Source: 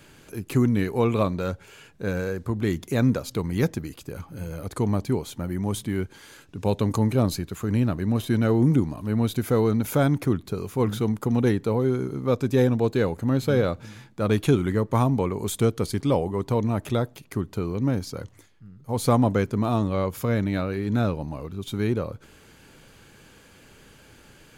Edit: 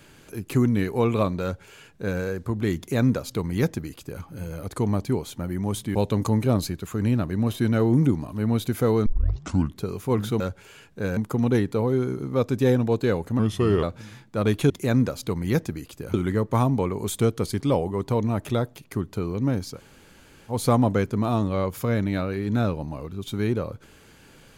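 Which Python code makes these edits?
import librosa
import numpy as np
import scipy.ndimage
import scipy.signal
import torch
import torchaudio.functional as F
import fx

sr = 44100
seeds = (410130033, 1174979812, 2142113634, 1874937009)

y = fx.edit(x, sr, fx.duplicate(start_s=1.43, length_s=0.77, to_s=11.09),
    fx.duplicate(start_s=2.78, length_s=1.44, to_s=14.54),
    fx.cut(start_s=5.95, length_s=0.69),
    fx.tape_start(start_s=9.75, length_s=0.71),
    fx.speed_span(start_s=13.31, length_s=0.36, speed=0.82),
    fx.room_tone_fill(start_s=18.16, length_s=0.74, crossfade_s=0.1), tone=tone)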